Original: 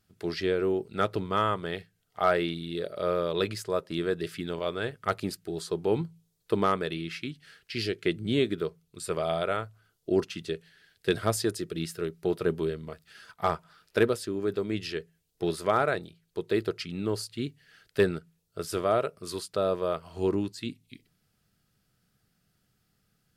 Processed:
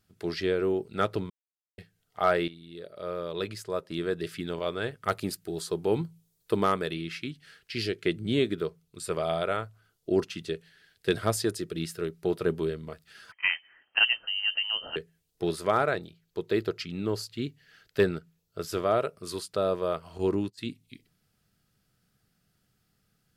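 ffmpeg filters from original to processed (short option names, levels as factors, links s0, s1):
-filter_complex "[0:a]asettb=1/sr,asplit=3[s0][s1][s2];[s0]atrim=end=5.034[s3];[s1]atrim=start=5.03:end=6.92,asetpts=PTS-STARTPTS,afade=t=in:d=0.004:c=qsin,afade=t=out:st=1.886:d=0.004:c=qsin,highshelf=f=9100:g=7.5[s4];[s2]atrim=start=6.916[s5];[s3][s4]acrossfade=d=0.004:c1=hsin:c2=qsin[s6];[s6][s5]acrossfade=d=0.004:c1=qsin:c2=hsin,asettb=1/sr,asplit=3[s7][s8][s9];[s7]atrim=end=13.324[s10];[s8]atrim=start=13.32:end=14.96,asetpts=PTS-STARTPTS,afade=t=in:d=0.004:c=qsin,afade=t=out:st=1.636:d=0.004:c=qsin,lowpass=f=2700:t=q:w=0.5098,lowpass=f=2700:t=q:w=0.6013,lowpass=f=2700:t=q:w=0.9,lowpass=f=2700:t=q:w=2.563,afreqshift=-3200[s11];[s9]atrim=start=14.956[s12];[s10][s11]acrossfade=d=0.004:c1=hsin:c2=qsin[s13];[s13][s12]acrossfade=d=0.004:c1=qsin:c2=hsin,asettb=1/sr,asplit=3[s14][s15][s16];[s14]atrim=end=15.854[s17];[s15]atrim=start=15.85:end=18.97,asetpts=PTS-STARTPTS,afade=t=in:d=0.004:c=qsin,afade=t=out:st=3.116:d=0.004:c=qsin,equalizer=f=9200:w=7.5:g=-14[s18];[s16]atrim=start=18.966[s19];[s17][s18]acrossfade=d=0.004:c1=hsin:c2=qsin[s20];[s20][s19]acrossfade=d=0.004:c1=qsin:c2=hsin,asplit=3[s21][s22][s23];[s21]afade=t=out:st=20.17:d=0.02[s24];[s22]agate=range=0.126:threshold=0.0126:ratio=16:release=100:detection=peak,afade=t=in:st=20.17:d=0.02,afade=t=out:st=20.57:d=0.02[s25];[s23]afade=t=in:st=20.57:d=0.02[s26];[s24][s25][s26]amix=inputs=3:normalize=0,asplit=4[s27][s28][s29][s30];[s27]atrim=end=1.3,asetpts=PTS-STARTPTS,afade=t=out:st=1.296:d=0.004:c=hsin[s31];[s28]atrim=start=1.3:end=1.78,asetpts=PTS-STARTPTS,volume=0[s32];[s29]atrim=start=1.78:end=2.48,asetpts=PTS-STARTPTS,afade=t=in:d=0.004:c=hsin,afade=t=out:st=0.696:d=0.004:c=hsin:silence=0.188365[s33];[s30]atrim=start=2.48,asetpts=PTS-STARTPTS,afade=t=in:d=1.91:silence=0.188365[s34];[s31][s32][s33][s34]concat=n=4:v=0:a=1"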